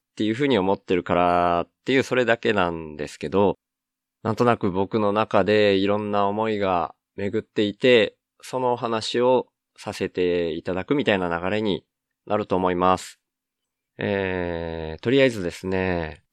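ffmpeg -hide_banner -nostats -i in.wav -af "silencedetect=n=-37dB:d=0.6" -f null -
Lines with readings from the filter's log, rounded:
silence_start: 3.53
silence_end: 4.25 | silence_duration: 0.72
silence_start: 13.11
silence_end: 13.99 | silence_duration: 0.88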